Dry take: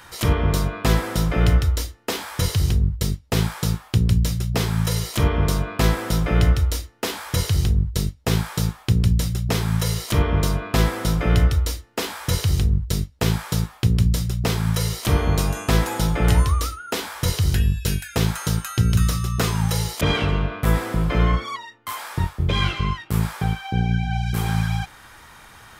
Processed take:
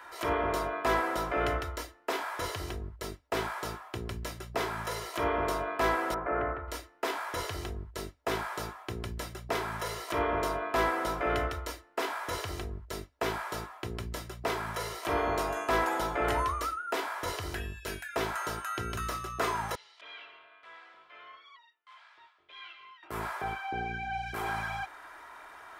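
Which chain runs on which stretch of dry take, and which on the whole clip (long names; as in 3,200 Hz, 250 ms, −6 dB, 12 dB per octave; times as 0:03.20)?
0:06.14–0:06.68: low-pass filter 1,800 Hz 24 dB per octave + low-shelf EQ 230 Hz −5.5 dB
0:19.75–0:23.03: transistor ladder low-pass 4,300 Hz, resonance 35% + first difference
whole clip: three-way crossover with the lows and the highs turned down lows −22 dB, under 380 Hz, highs −14 dB, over 2,000 Hz; comb filter 3 ms, depth 43%; transient designer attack −4 dB, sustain 0 dB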